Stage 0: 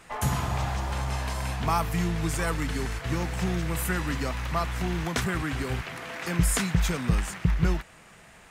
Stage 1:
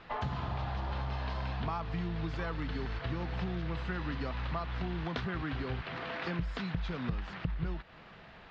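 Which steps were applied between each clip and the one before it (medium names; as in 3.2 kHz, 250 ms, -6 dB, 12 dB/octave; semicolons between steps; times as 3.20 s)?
compression, threshold -32 dBFS, peak gain reduction 14 dB; steep low-pass 4.4 kHz 36 dB/octave; peaking EQ 2.2 kHz -4 dB 0.6 oct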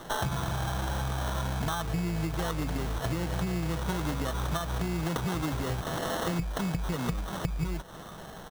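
comb 6.1 ms, depth 33%; compression 4:1, threshold -36 dBFS, peak gain reduction 8 dB; sample-rate reducer 2.4 kHz, jitter 0%; trim +8.5 dB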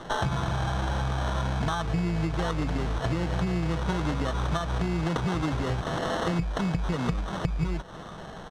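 distance through air 89 m; trim +3.5 dB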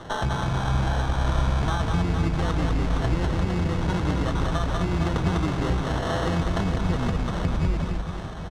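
octave divider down 1 oct, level -2 dB; reverse bouncing-ball echo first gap 200 ms, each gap 1.3×, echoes 5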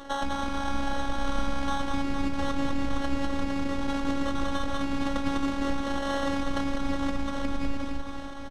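robot voice 278 Hz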